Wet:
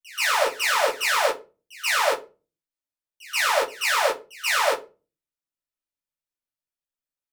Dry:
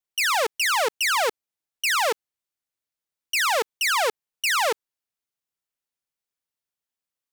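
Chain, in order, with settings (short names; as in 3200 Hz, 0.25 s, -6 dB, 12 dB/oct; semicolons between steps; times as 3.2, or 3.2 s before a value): pre-echo 0.131 s -15 dB; shoebox room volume 150 m³, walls furnished, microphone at 2.7 m; upward expander 1.5:1, over -27 dBFS; gain -4.5 dB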